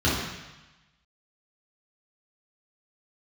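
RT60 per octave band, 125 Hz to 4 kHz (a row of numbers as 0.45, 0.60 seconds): 1.2, 1.0, 0.90, 1.2, 1.2, 1.2 seconds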